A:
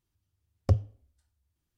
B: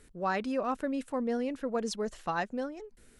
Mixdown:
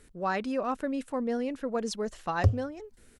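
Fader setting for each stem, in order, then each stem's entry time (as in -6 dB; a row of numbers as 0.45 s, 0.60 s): +0.5 dB, +1.0 dB; 1.75 s, 0.00 s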